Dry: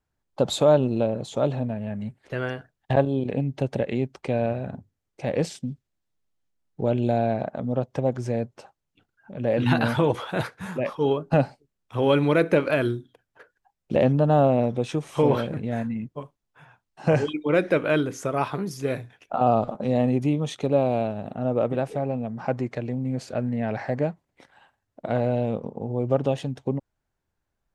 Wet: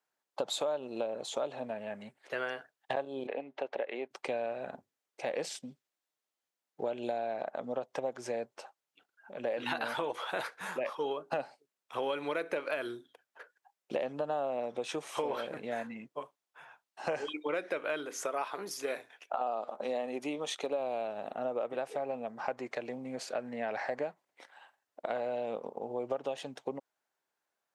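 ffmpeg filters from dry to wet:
ffmpeg -i in.wav -filter_complex "[0:a]asettb=1/sr,asplit=3[link_01][link_02][link_03];[link_01]atrim=end=3.274[link_04];[link_02]atrim=start=3.27:end=4.11,asetpts=PTS-STARTPTS,afade=type=in:duration=0.004:curve=qsin,afade=type=out:start_time=0.836:duration=0.004:curve=qsin,highpass=370,lowpass=2700[link_05];[link_03]atrim=start=4.106[link_06];[link_04][link_05]acrossfade=duration=0.004:curve1=hsin:curve2=qsin[link_07];[link_07][link_06]acrossfade=duration=0.004:curve1=qsin:curve2=hsin,asettb=1/sr,asplit=3[link_08][link_09][link_10];[link_08]atrim=end=18.054[link_11];[link_09]atrim=start=18.05:end=20.8,asetpts=PTS-STARTPTS,afade=type=in:duration=0.004:curve=qsin,afade=type=out:start_time=2.746:duration=0.004:curve=qsin,equalizer=frequency=110:width=1.4:gain=-12.5[link_12];[link_10]atrim=start=20.796[link_13];[link_11][link_12]acrossfade=duration=0.004:curve1=hsin:curve2=qsin[link_14];[link_14][link_13]acrossfade=duration=0.004:curve1=qsin:curve2=hsin,highpass=530,acompressor=threshold=-31dB:ratio=6" out.wav

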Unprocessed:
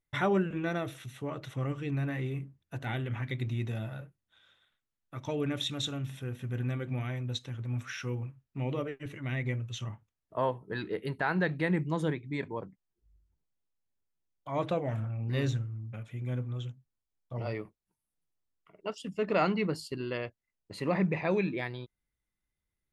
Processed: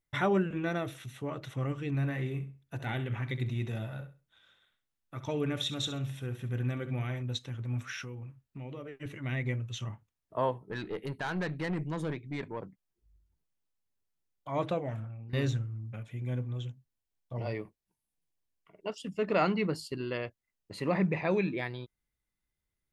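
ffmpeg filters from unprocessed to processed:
ffmpeg -i in.wav -filter_complex "[0:a]asettb=1/sr,asplit=3[link_01][link_02][link_03];[link_01]atrim=end=1.884[link_04];[link_02]atrim=start=1.88:end=7.22,asetpts=PTS-STARTPTS,afade=type=in:duration=0.004:curve=qsin,afade=type=out:start_time=5.336:duration=0.004:curve=qsin,aecho=1:1:66|132|198:0.237|0.0593|0.0148,atrim=end_sample=235494[link_05];[link_03]atrim=start=7.216[link_06];[link_04][link_05]acrossfade=duration=0.004:curve1=hsin:curve2=qsin[link_07];[link_07][link_06]acrossfade=duration=0.004:curve1=qsin:curve2=hsin,asettb=1/sr,asplit=3[link_08][link_09][link_10];[link_08]atrim=end=8.024[link_11];[link_09]atrim=start=8.02:end=8.95,asetpts=PTS-STARTPTS,afade=type=in:duration=0.004:curve=qsin,afade=type=out:start_time=0.926:duration=0.004:curve=qsin,acompressor=threshold=-40dB:ratio=4:attack=3.2:release=140:knee=1:detection=peak[link_12];[link_10]atrim=start=8.946[link_13];[link_11][link_12]acrossfade=duration=0.004:curve1=hsin:curve2=qsin[link_14];[link_14][link_13]acrossfade=duration=0.004:curve1=qsin:curve2=hsin,asettb=1/sr,asplit=3[link_15][link_16][link_17];[link_15]atrim=end=10.584[link_18];[link_16]atrim=start=10.58:end=12.63,asetpts=PTS-STARTPTS,afade=type=in:duration=0.004:curve=qsin,afade=type=out:start_time=2.046:duration=0.004:curve=qsin,aeval=exprs='(tanh(28.2*val(0)+0.35)-tanh(0.35))/28.2':channel_layout=same[link_19];[link_17]atrim=start=12.626[link_20];[link_18][link_19]acrossfade=duration=0.004:curve1=hsin:curve2=qsin[link_21];[link_21][link_20]acrossfade=duration=0.004:curve1=qsin:curve2=hsin,asettb=1/sr,asplit=3[link_22][link_23][link_24];[link_22]atrim=end=16.024[link_25];[link_23]atrim=start=16.02:end=18.92,asetpts=PTS-STARTPTS,afade=type=in:duration=0.004:curve=qsin,afade=type=out:start_time=2.896:duration=0.004:curve=qsin,bandreject=frequency=1300:width=6.1[link_26];[link_24]atrim=start=18.916[link_27];[link_25][link_26]acrossfade=duration=0.004:curve1=hsin:curve2=qsin[link_28];[link_28][link_27]acrossfade=duration=0.004:curve1=qsin:curve2=hsin,asplit=2[link_29][link_30];[link_29]atrim=end=15.33,asetpts=PTS-STARTPTS,afade=type=out:start_time=14.63:duration=0.7:silence=0.199526[link_31];[link_30]atrim=start=15.33,asetpts=PTS-STARTPTS,afade=type=in:duration=0.004:curve=hsin:silence=0.199526[link_32];[link_31][link_32]concat=n=2:v=0:a=1" out.wav

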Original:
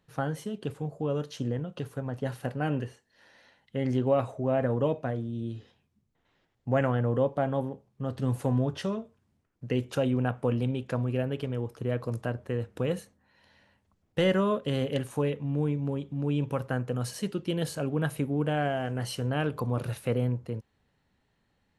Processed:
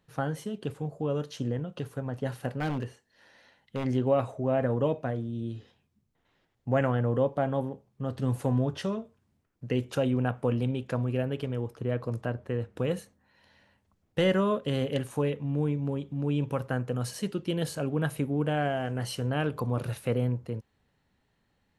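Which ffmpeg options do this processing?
ffmpeg -i in.wav -filter_complex "[0:a]asplit=3[link_01][link_02][link_03];[link_01]afade=type=out:start_time=2.56:duration=0.02[link_04];[link_02]aeval=exprs='0.0668*(abs(mod(val(0)/0.0668+3,4)-2)-1)':channel_layout=same,afade=type=in:start_time=2.56:duration=0.02,afade=type=out:start_time=3.84:duration=0.02[link_05];[link_03]afade=type=in:start_time=3.84:duration=0.02[link_06];[link_04][link_05][link_06]amix=inputs=3:normalize=0,asettb=1/sr,asplit=3[link_07][link_08][link_09];[link_07]atrim=end=11.724[link_10];[link_08]atrim=start=11.72:end=12.78,asetpts=PTS-STARTPTS,afade=type=in:duration=0.004:curve=qsin,afade=type=out:start_time=1.056:duration=0.004:curve=qsin,highshelf=frequency=5600:gain=-7.5[link_11];[link_09]atrim=start=12.776[link_12];[link_10][link_11]acrossfade=duration=0.004:curve1=hsin:curve2=qsin[link_13];[link_13][link_12]acrossfade=duration=0.004:curve1=qsin:curve2=hsin" out.wav

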